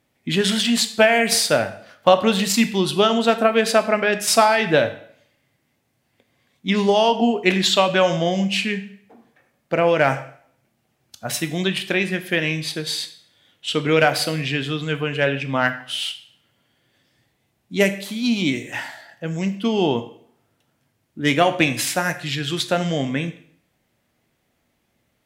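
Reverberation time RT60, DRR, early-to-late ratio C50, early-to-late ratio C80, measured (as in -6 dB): 0.60 s, 9.0 dB, 13.5 dB, 16.5 dB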